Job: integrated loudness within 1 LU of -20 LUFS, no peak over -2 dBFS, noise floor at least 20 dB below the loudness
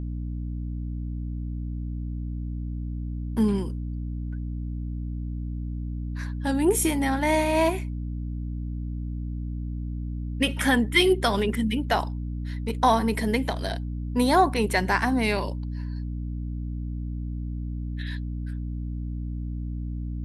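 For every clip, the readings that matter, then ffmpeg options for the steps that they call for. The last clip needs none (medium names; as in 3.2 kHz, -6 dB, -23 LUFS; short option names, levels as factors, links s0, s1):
hum 60 Hz; highest harmonic 300 Hz; hum level -28 dBFS; loudness -27.5 LUFS; peak level -7.0 dBFS; loudness target -20.0 LUFS
-> -af "bandreject=f=60:t=h:w=6,bandreject=f=120:t=h:w=6,bandreject=f=180:t=h:w=6,bandreject=f=240:t=h:w=6,bandreject=f=300:t=h:w=6"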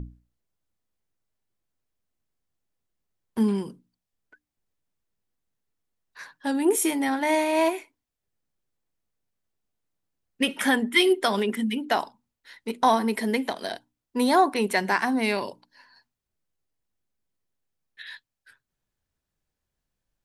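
hum not found; loudness -24.5 LUFS; peak level -8.0 dBFS; loudness target -20.0 LUFS
-> -af "volume=1.68"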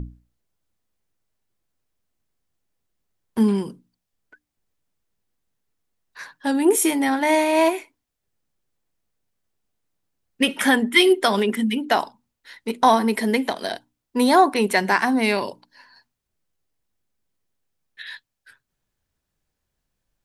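loudness -20.0 LUFS; peak level -3.5 dBFS; noise floor -81 dBFS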